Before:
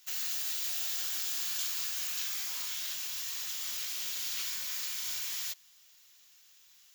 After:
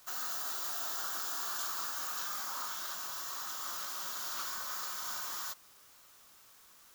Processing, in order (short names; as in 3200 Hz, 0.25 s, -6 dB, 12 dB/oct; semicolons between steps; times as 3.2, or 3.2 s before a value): HPF 260 Hz 6 dB/oct; resonant high shelf 1700 Hz -10.5 dB, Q 3; added noise white -69 dBFS; gain +7 dB